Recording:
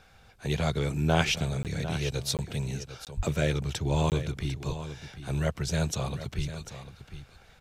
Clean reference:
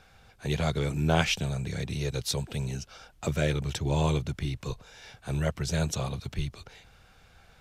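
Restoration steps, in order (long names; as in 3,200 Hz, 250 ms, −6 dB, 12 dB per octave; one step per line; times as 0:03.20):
0:03.16–0:03.28: high-pass filter 140 Hz 24 dB per octave
repair the gap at 0:01.63/0:02.37/0:03.05/0:04.10, 18 ms
echo removal 749 ms −12 dB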